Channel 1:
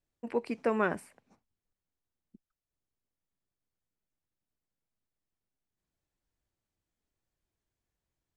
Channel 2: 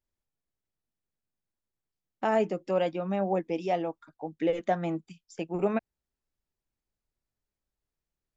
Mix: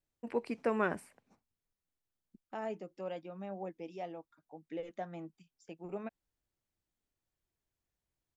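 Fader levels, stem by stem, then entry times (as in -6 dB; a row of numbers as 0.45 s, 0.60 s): -3.0 dB, -14.0 dB; 0.00 s, 0.30 s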